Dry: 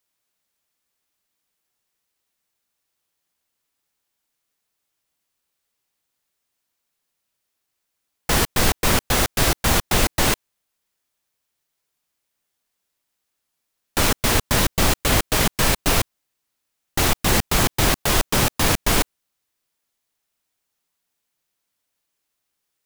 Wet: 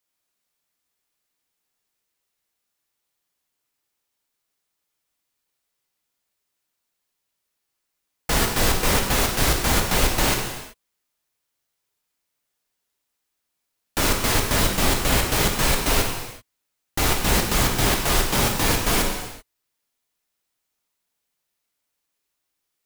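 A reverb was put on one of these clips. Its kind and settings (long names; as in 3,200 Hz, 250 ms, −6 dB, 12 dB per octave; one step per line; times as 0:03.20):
reverb whose tail is shaped and stops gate 410 ms falling, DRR 1 dB
level −3.5 dB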